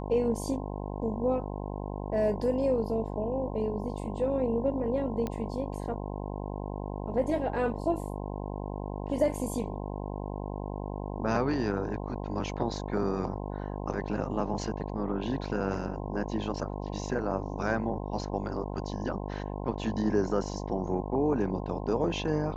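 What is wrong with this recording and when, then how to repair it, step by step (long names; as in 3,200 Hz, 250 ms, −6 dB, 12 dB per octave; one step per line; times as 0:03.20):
mains buzz 50 Hz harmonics 21 −36 dBFS
0:05.27: click −20 dBFS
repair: click removal
hum removal 50 Hz, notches 21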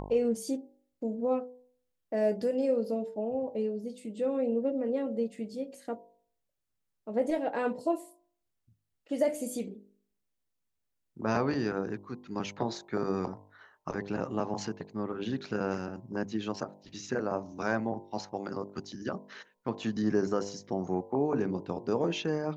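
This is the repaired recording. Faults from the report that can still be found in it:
none of them is left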